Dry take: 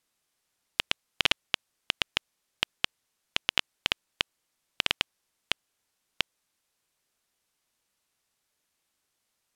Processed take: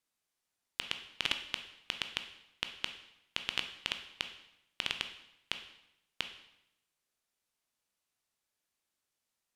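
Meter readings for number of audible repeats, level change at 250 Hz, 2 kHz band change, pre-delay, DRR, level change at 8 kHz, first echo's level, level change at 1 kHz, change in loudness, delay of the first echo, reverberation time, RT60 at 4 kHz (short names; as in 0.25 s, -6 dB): none, -7.5 dB, -7.5 dB, 7 ms, 6.5 dB, -7.5 dB, none, -8.5 dB, -7.5 dB, none, 0.85 s, 0.75 s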